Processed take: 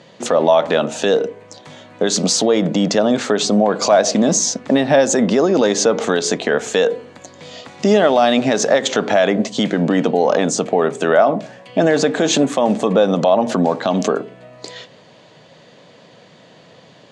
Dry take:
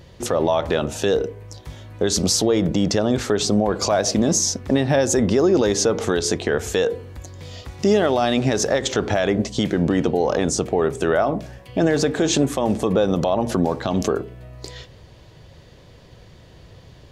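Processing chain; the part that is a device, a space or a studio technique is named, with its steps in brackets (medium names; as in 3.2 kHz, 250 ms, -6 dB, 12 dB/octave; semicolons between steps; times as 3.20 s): television speaker (cabinet simulation 180–7800 Hz, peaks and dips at 360 Hz -7 dB, 640 Hz +3 dB, 5.4 kHz -5 dB); trim +5.5 dB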